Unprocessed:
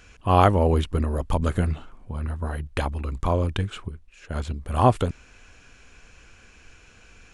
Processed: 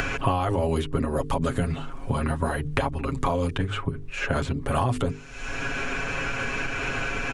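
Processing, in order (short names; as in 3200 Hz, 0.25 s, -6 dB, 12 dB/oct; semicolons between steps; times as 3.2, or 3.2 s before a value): notches 50/100/150/200/250/300/350/400/450 Hz; comb 7.3 ms, depth 76%; upward compressor, threshold -34 dBFS; limiter -14.5 dBFS, peak gain reduction 11 dB; three-band squash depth 100%; gain +1 dB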